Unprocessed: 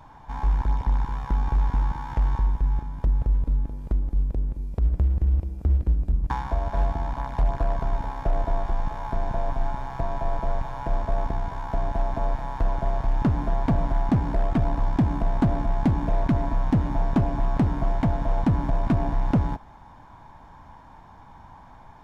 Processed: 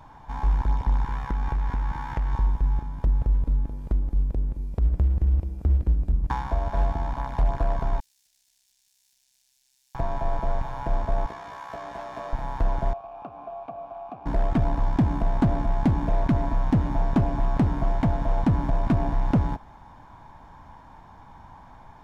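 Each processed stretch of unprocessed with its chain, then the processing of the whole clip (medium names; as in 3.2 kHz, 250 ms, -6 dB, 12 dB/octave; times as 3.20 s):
1.04–2.33 s: peaking EQ 1.9 kHz +5 dB 1 oct + compression, threshold -21 dBFS
8.00–9.95 s: self-modulated delay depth 0.15 ms + inverse Chebyshev high-pass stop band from 1.3 kHz, stop band 70 dB + spectrum-flattening compressor 2:1
11.26–12.33 s: high-pass 860 Hz 6 dB/octave + doubling 17 ms -3.5 dB
12.93–14.26 s: vowel filter a + three bands compressed up and down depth 70%
whole clip: none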